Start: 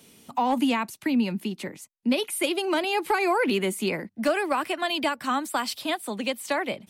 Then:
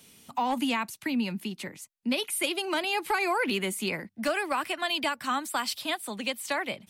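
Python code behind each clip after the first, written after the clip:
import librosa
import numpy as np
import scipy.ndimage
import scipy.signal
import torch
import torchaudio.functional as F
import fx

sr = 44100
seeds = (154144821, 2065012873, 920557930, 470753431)

y = fx.peak_eq(x, sr, hz=380.0, db=-6.5, octaves=2.5)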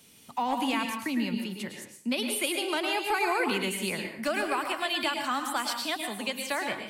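y = fx.rev_plate(x, sr, seeds[0], rt60_s=0.53, hf_ratio=0.95, predelay_ms=95, drr_db=4.0)
y = y * 10.0 ** (-1.5 / 20.0)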